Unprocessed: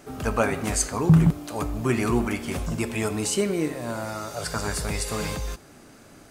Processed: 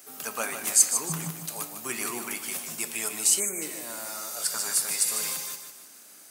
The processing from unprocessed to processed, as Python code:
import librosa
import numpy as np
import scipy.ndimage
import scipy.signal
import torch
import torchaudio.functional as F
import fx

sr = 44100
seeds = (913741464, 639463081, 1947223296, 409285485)

p1 = scipy.signal.sosfilt(scipy.signal.butter(4, 140.0, 'highpass', fs=sr, output='sos'), x)
p2 = fx.tilt_eq(p1, sr, slope=4.0)
p3 = p2 + fx.echo_feedback(p2, sr, ms=152, feedback_pct=42, wet_db=-8.5, dry=0)
p4 = fx.spec_box(p3, sr, start_s=3.4, length_s=0.22, low_hz=2500.0, high_hz=6100.0, gain_db=-30)
p5 = fx.high_shelf(p4, sr, hz=8800.0, db=9.0)
y = p5 * librosa.db_to_amplitude(-8.5)